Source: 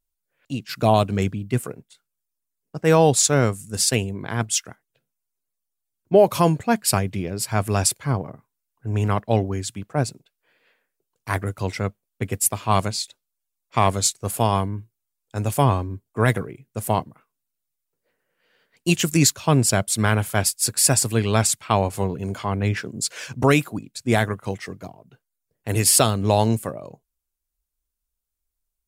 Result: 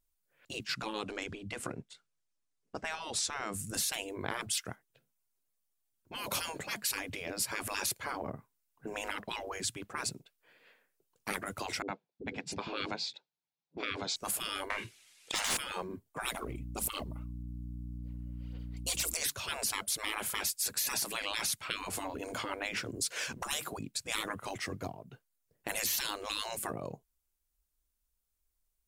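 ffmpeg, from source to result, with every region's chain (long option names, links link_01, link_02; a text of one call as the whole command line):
ffmpeg -i in.wav -filter_complex "[0:a]asettb=1/sr,asplit=3[link_01][link_02][link_03];[link_01]atrim=end=0.674[link_04];[link_02]atrim=start=0.67:end=3.54,asetpts=PTS-STARTPTS,afade=type=in:duration=0.004:curve=qsin,afade=type=out:start_time=2.866:duration=0.004:curve=qsin,lowpass=7000,acompressor=threshold=-23dB:ratio=3:attack=3.2:release=140:knee=1:detection=peak[link_05];[link_03]atrim=start=3.536[link_06];[link_04][link_05]acrossfade=duration=0.004:curve1=hsin:curve2=qsin[link_07];[link_07][link_06]acrossfade=duration=0.004:curve1=qsin:curve2=hsin,asettb=1/sr,asplit=3[link_08][link_09][link_10];[link_08]atrim=end=11.824[link_11];[link_09]atrim=start=11.82:end=14.16,asetpts=PTS-STARTPTS,afade=type=in:duration=0.004:curve=qsin,afade=type=out:start_time=2.336:duration=0.004:curve=qsin,highpass=frequency=130:width=0.5412,highpass=frequency=130:width=1.3066,equalizer=frequency=160:width_type=q:width=4:gain=8,equalizer=frequency=600:width_type=q:width=4:gain=-4,equalizer=frequency=860:width_type=q:width=4:gain=5,equalizer=frequency=1200:width_type=q:width=4:gain=-9,equalizer=frequency=1900:width_type=q:width=4:gain=-6,equalizer=frequency=3000:width_type=q:width=4:gain=-6,lowpass=frequency=4300:width=0.5412,lowpass=frequency=4300:width=1.3066,acrossover=split=330[link_12][link_13];[link_13]adelay=60[link_14];[link_12][link_14]amix=inputs=2:normalize=0,atrim=end_sample=103194[link_15];[link_10]atrim=start=14.156[link_16];[link_11][link_15]acrossfade=duration=0.004:curve1=hsin:curve2=qsin[link_17];[link_17][link_16]acrossfade=duration=0.004:curve1=qsin:curve2=hsin,asettb=1/sr,asplit=3[link_18][link_19][link_20];[link_18]atrim=end=14.704[link_21];[link_19]atrim=start=14.7:end=15.57,asetpts=PTS-STARTPTS,afade=type=in:duration=0.004:curve=qsin,afade=type=out:start_time=0.866:duration=0.004:curve=qsin,lowpass=frequency=11000:width=0.5412,lowpass=frequency=11000:width=1.3066,highshelf=frequency=1600:width_type=q:width=1.5:gain=13.5,asplit=2[link_22][link_23];[link_23]highpass=frequency=720:poles=1,volume=32dB,asoftclip=type=tanh:threshold=-6dB[link_24];[link_22][link_24]amix=inputs=2:normalize=0,lowpass=frequency=1400:poles=1,volume=-6dB[link_25];[link_20]atrim=start=15.566[link_26];[link_21][link_25]acrossfade=duration=0.004:curve1=hsin:curve2=qsin[link_27];[link_27][link_26]acrossfade=duration=0.004:curve1=qsin:curve2=hsin,asettb=1/sr,asplit=3[link_28][link_29][link_30];[link_28]atrim=end=16.344[link_31];[link_29]atrim=start=16.34:end=19.17,asetpts=PTS-STARTPTS,afade=type=in:duration=0.004:curve=qsin,afade=type=out:start_time=2.826:duration=0.004:curve=qsin,equalizer=frequency=1700:width=3.9:gain=-15,aphaser=in_gain=1:out_gain=1:delay=3.5:decay=0.58:speed=1.8:type=sinusoidal,aeval=exprs='val(0)+0.01*(sin(2*PI*60*n/s)+sin(2*PI*2*60*n/s)/2+sin(2*PI*3*60*n/s)/3+sin(2*PI*4*60*n/s)/4+sin(2*PI*5*60*n/s)/5)':channel_layout=same[link_32];[link_30]atrim=start=19.166[link_33];[link_31][link_32]acrossfade=duration=0.004:curve1=hsin:curve2=qsin[link_34];[link_34][link_33]acrossfade=duration=0.004:curve1=qsin:curve2=hsin,afftfilt=real='re*lt(hypot(re,im),0.126)':imag='im*lt(hypot(re,im),0.126)':win_size=1024:overlap=0.75,acompressor=threshold=-33dB:ratio=2" out.wav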